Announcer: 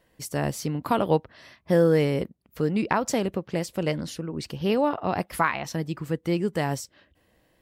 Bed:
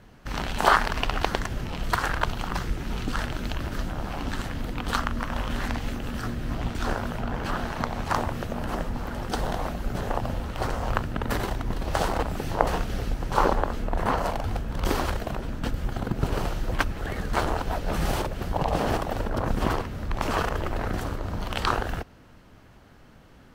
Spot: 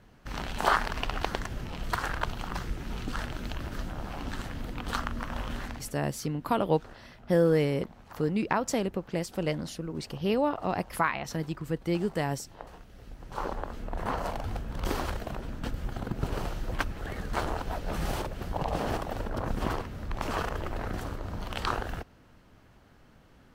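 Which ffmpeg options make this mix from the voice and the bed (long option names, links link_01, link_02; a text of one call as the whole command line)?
ffmpeg -i stem1.wav -i stem2.wav -filter_complex "[0:a]adelay=5600,volume=-3.5dB[link_01];[1:a]volume=11.5dB,afade=type=out:start_time=5.49:duration=0.47:silence=0.141254,afade=type=in:start_time=12.94:duration=1.4:silence=0.141254[link_02];[link_01][link_02]amix=inputs=2:normalize=0" out.wav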